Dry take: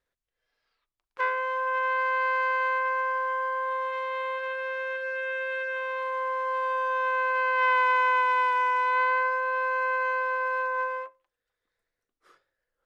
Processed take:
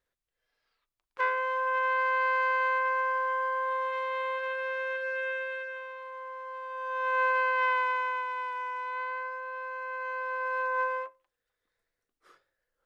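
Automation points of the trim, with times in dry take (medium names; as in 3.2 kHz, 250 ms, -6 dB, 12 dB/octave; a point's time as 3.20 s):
5.27 s -1 dB
5.99 s -11.5 dB
6.69 s -11.5 dB
7.23 s +1 dB
8.30 s -10.5 dB
9.85 s -10.5 dB
10.81 s 0 dB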